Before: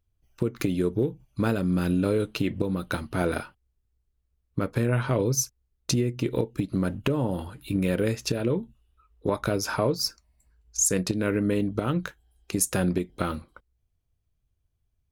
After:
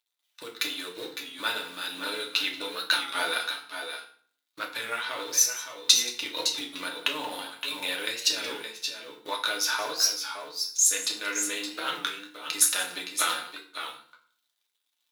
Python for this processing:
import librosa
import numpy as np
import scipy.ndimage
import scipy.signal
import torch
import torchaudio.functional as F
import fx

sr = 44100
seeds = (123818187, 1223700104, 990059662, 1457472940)

p1 = fx.law_mismatch(x, sr, coded='A')
p2 = fx.rider(p1, sr, range_db=10, speed_s=0.5)
p3 = scipy.signal.sosfilt(scipy.signal.butter(2, 1300.0, 'highpass', fs=sr, output='sos'), p2)
p4 = fx.peak_eq(p3, sr, hz=3700.0, db=12.5, octaves=0.39)
p5 = p4 + fx.echo_multitap(p4, sr, ms=(179, 567, 581), db=(-17.5, -9.5, -13.0), dry=0)
p6 = fx.rev_fdn(p5, sr, rt60_s=0.5, lf_ratio=1.35, hf_ratio=0.85, size_ms=20.0, drr_db=0.0)
p7 = fx.record_warp(p6, sr, rpm=33.33, depth_cents=100.0)
y = p7 * 10.0 ** (3.0 / 20.0)